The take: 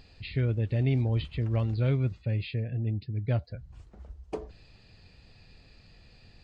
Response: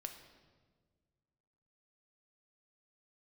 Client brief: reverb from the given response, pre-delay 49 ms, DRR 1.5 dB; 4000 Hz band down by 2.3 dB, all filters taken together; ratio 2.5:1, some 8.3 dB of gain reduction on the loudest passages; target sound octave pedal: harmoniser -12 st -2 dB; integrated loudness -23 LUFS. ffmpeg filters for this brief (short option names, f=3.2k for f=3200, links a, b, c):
-filter_complex "[0:a]equalizer=f=4k:t=o:g=-3,acompressor=threshold=-35dB:ratio=2.5,asplit=2[a][b];[1:a]atrim=start_sample=2205,adelay=49[c];[b][c]afir=irnorm=-1:irlink=0,volume=1.5dB[d];[a][d]amix=inputs=2:normalize=0,asplit=2[e][f];[f]asetrate=22050,aresample=44100,atempo=2,volume=-2dB[g];[e][g]amix=inputs=2:normalize=0,volume=12dB"